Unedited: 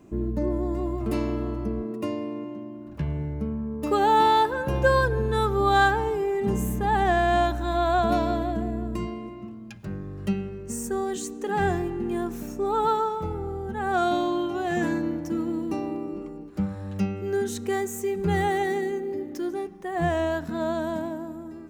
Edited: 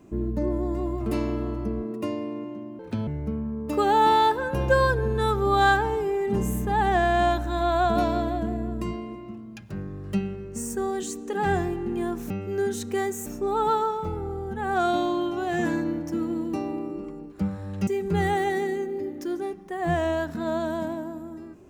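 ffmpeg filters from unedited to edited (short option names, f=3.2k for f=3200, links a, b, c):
-filter_complex "[0:a]asplit=6[a][b][c][d][e][f];[a]atrim=end=2.794[g];[b]atrim=start=2.79:end=3.21,asetpts=PTS-STARTPTS,asetrate=65709,aresample=44100[h];[c]atrim=start=3.206:end=12.442[i];[d]atrim=start=17.048:end=18.012[j];[e]atrim=start=12.438:end=17.052[k];[f]atrim=start=18.008[l];[g][h]acrossfade=d=0.004:c1=hsin:c2=hsin[m];[m][i]acrossfade=d=0.004:c1=hsin:c2=hsin[n];[n][j]acrossfade=d=0.004:c1=hsin:c2=hsin[o];[o][k]acrossfade=d=0.004:c1=hsin:c2=hsin[p];[p][l]acrossfade=d=0.004:c1=hsin:c2=hsin"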